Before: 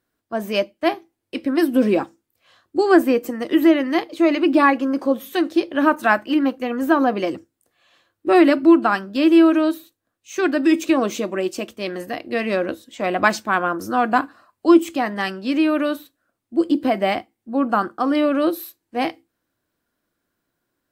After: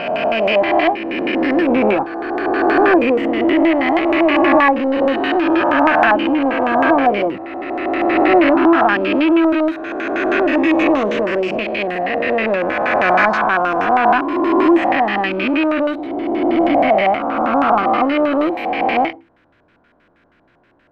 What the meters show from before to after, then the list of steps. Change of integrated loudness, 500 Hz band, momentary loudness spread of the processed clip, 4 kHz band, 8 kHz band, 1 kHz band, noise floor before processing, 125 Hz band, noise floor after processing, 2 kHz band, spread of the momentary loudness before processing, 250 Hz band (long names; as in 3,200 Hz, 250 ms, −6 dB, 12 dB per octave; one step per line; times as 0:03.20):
+4.0 dB, +5.5 dB, 8 LU, +4.0 dB, below −10 dB, +7.5 dB, −78 dBFS, can't be measured, −56 dBFS, +7.0 dB, 13 LU, +2.0 dB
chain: peak hold with a rise ahead of every peak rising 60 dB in 1.97 s
power curve on the samples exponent 0.7
auto-filter low-pass square 6.3 Hz 830–2,400 Hz
level −5.5 dB